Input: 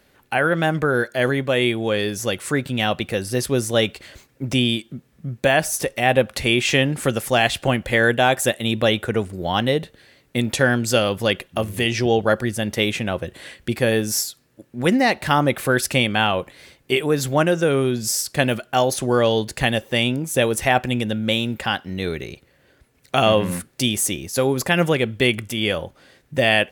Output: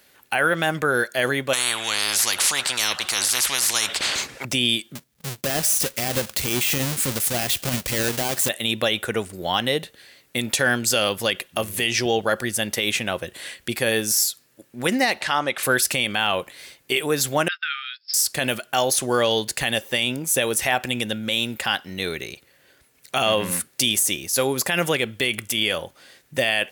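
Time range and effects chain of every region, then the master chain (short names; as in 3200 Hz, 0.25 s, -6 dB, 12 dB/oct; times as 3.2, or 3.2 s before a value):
1.53–4.45 air absorption 65 m + spectral compressor 10:1
4.95–8.49 half-waves squared off + gate -46 dBFS, range -10 dB + bell 880 Hz -7.5 dB 2.9 oct
15.21–15.63 LPF 6200 Hz + low shelf 320 Hz -11 dB + upward compressor, threshold -26 dBFS
17.48–18.14 gate -22 dBFS, range -29 dB + brick-wall FIR band-pass 1200–5400 Hz
whole clip: de-esser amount 35%; tilt +2.5 dB/oct; limiter -8.5 dBFS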